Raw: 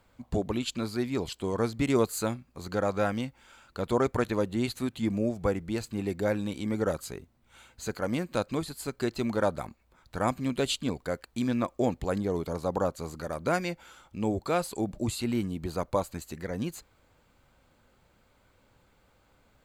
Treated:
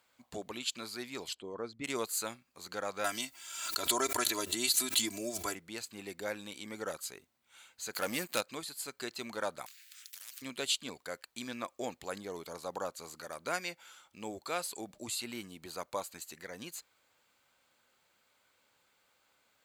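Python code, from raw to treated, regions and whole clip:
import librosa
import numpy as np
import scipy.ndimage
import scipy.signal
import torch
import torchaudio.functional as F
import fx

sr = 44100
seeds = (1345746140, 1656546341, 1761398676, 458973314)

y = fx.chain(x, sr, fx.envelope_sharpen(power=1.5),
    fx.air_absorb(metres=74.0), at=(1.34, 1.84))
y = fx.chain(y, sr, fx.bass_treble(bass_db=-1, treble_db=12),
    fx.comb(ms=3.0, depth=0.93),
    fx.pre_swell(db_per_s=53.0), at=(3.04, 5.55))
y = fx.chain(y, sr, fx.leveller(passes=2),
    fx.high_shelf(hz=9700.0, db=12.0), at=(7.93, 8.41))
y = fx.chain(y, sr, fx.ellip_highpass(hz=1700.0, order=4, stop_db=50),
    fx.spectral_comp(ratio=10.0), at=(9.66, 10.42))
y = fx.highpass(y, sr, hz=490.0, slope=6)
y = fx.tilt_shelf(y, sr, db=-5.0, hz=1500.0)
y = F.gain(torch.from_numpy(y), -4.0).numpy()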